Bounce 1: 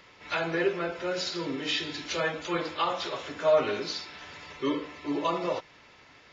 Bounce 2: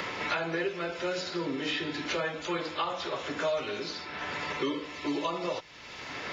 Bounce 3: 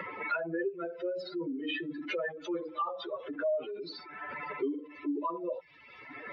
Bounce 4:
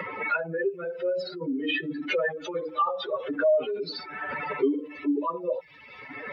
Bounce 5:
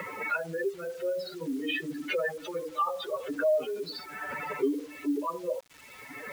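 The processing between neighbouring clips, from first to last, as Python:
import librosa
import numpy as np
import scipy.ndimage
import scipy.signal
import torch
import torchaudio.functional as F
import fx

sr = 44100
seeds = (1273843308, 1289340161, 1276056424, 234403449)

y1 = fx.band_squash(x, sr, depth_pct=100)
y1 = y1 * 10.0 ** (-3.0 / 20.0)
y2 = fx.spec_expand(y1, sr, power=2.9)
y2 = fx.upward_expand(y2, sr, threshold_db=-43.0, expansion=1.5)
y3 = fx.rider(y2, sr, range_db=10, speed_s=2.0)
y3 = fx.notch_comb(y3, sr, f0_hz=340.0)
y3 = y3 * 10.0 ** (8.5 / 20.0)
y4 = fx.quant_dither(y3, sr, seeds[0], bits=8, dither='none')
y4 = y4 * 10.0 ** (-3.5 / 20.0)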